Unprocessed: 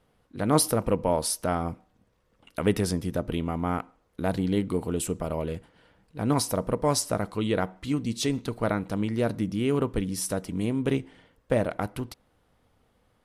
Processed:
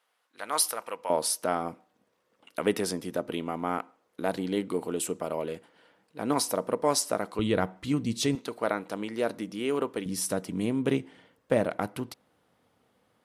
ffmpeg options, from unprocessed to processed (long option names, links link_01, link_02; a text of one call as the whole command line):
ffmpeg -i in.wav -af "asetnsamples=nb_out_samples=441:pad=0,asendcmd='1.1 highpass f 280;7.39 highpass f 88;8.35 highpass f 350;10.06 highpass f 150',highpass=1000" out.wav